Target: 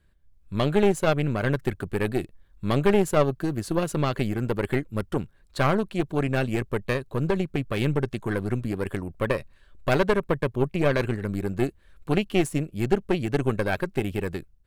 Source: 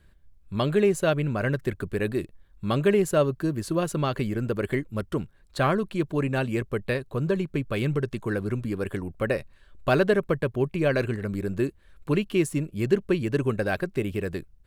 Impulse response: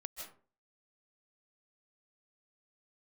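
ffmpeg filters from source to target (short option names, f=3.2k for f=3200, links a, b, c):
-af "dynaudnorm=f=130:g=5:m=6.5dB,aeval=exprs='0.708*(cos(1*acos(clip(val(0)/0.708,-1,1)))-cos(1*PI/2))+0.141*(cos(4*acos(clip(val(0)/0.708,-1,1)))-cos(4*PI/2))':c=same,volume=-6.5dB"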